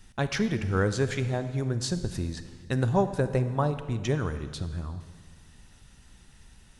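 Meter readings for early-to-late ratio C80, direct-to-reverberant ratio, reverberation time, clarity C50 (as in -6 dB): 12.5 dB, 10.5 dB, 1.8 s, 11.0 dB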